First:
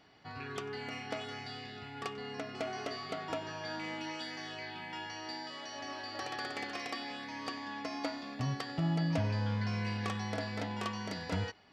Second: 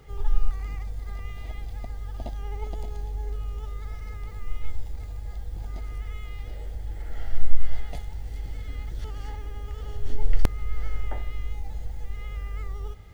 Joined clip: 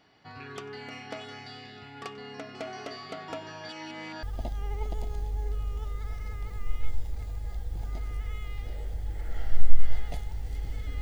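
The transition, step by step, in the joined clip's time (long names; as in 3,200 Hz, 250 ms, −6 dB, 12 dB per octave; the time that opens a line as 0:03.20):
first
0:03.69–0:04.23: reverse
0:04.23: continue with second from 0:02.04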